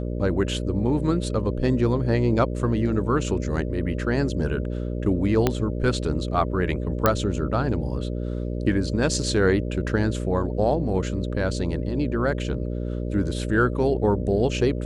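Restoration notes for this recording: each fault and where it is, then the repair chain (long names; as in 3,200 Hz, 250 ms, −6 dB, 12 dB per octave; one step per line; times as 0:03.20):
mains buzz 60 Hz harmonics 10 −28 dBFS
0:05.47: click −6 dBFS
0:07.06: click −4 dBFS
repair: click removal
hum removal 60 Hz, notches 10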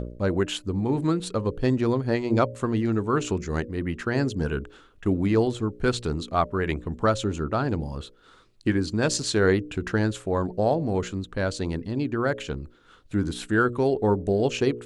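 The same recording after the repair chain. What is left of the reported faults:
0:05.47: click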